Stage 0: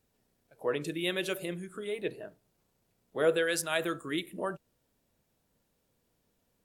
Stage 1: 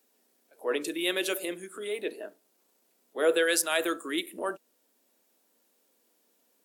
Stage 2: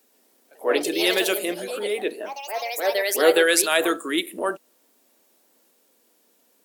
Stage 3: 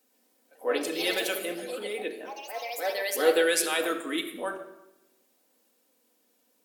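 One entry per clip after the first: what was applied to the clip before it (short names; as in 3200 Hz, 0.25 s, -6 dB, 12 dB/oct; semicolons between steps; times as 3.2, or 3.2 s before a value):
steep high-pass 240 Hz 36 dB/oct; high shelf 5600 Hz +7 dB; transient shaper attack -5 dB, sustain -1 dB; gain +4 dB
echoes that change speed 0.121 s, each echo +3 st, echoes 3, each echo -6 dB; gain +7 dB
reverb RT60 0.90 s, pre-delay 4 ms, DRR 3.5 dB; gain -8 dB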